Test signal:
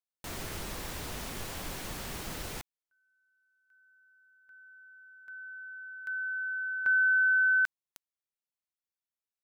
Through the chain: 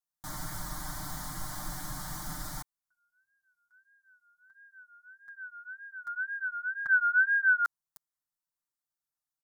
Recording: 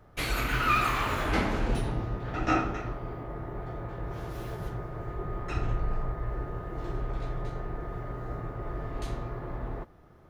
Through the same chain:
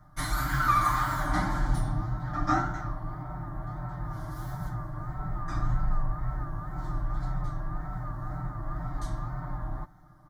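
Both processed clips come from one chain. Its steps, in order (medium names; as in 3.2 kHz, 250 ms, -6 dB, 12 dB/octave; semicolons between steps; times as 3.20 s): wow and flutter 1.7 Hz 120 cents; static phaser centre 1.1 kHz, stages 4; comb 6.6 ms, depth 98%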